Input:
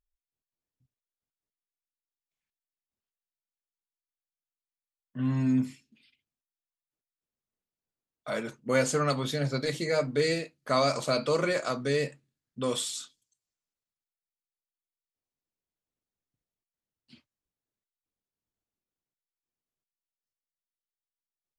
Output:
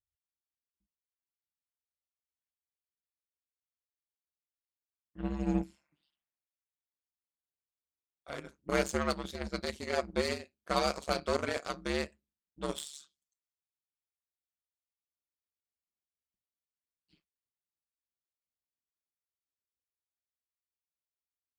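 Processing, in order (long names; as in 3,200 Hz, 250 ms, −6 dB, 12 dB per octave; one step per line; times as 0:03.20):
healed spectral selection 0:05.70–0:06.60, 550–2,700 Hz both
ring modulation 72 Hz
harmonic generator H 7 −20 dB, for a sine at −14 dBFS
level −1 dB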